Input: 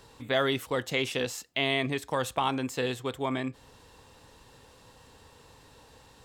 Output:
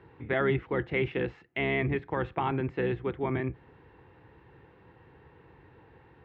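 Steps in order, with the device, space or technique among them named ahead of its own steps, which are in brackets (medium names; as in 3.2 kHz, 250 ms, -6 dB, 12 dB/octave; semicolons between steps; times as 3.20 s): sub-octave bass pedal (octave divider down 1 oct, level -2 dB; cabinet simulation 67–2200 Hz, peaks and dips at 130 Hz +3 dB, 240 Hz -6 dB, 350 Hz +9 dB, 590 Hz -7 dB, 1.1 kHz -5 dB, 2.1 kHz +3 dB)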